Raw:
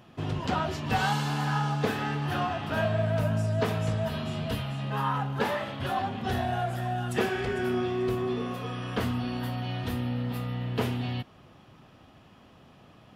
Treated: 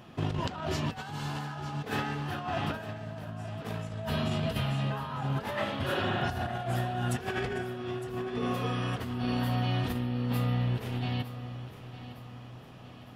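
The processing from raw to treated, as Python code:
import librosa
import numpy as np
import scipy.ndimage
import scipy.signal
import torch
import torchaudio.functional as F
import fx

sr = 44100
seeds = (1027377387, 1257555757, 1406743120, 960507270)

p1 = fx.spec_repair(x, sr, seeds[0], start_s=5.92, length_s=0.57, low_hz=210.0, high_hz=4000.0, source='both')
p2 = fx.over_compress(p1, sr, threshold_db=-32.0, ratio=-0.5)
y = p2 + fx.echo_feedback(p2, sr, ms=909, feedback_pct=46, wet_db=-13.5, dry=0)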